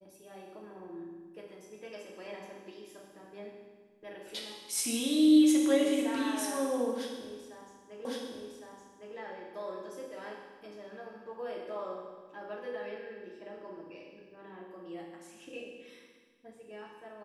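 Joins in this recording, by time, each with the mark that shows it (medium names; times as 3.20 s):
8.05 s: repeat of the last 1.11 s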